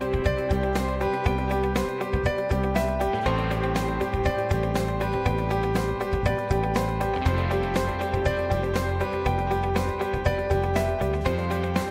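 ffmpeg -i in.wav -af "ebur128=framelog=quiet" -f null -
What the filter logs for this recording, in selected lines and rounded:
Integrated loudness:
  I:         -25.5 LUFS
  Threshold: -35.5 LUFS
Loudness range:
  LRA:         0.2 LU
  Threshold: -45.5 LUFS
  LRA low:   -25.6 LUFS
  LRA high:  -25.4 LUFS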